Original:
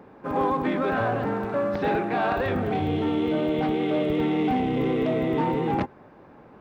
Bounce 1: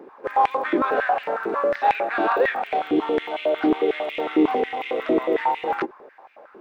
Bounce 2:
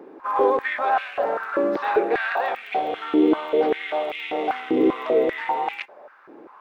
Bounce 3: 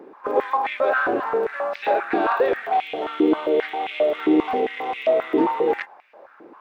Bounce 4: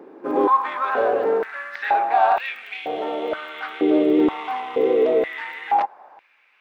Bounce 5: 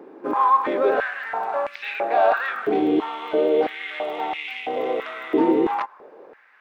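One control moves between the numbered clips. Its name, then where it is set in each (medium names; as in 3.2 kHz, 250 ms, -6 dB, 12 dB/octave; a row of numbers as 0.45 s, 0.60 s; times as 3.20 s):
step-sequenced high-pass, rate: 11 Hz, 5.1 Hz, 7.5 Hz, 2.1 Hz, 3 Hz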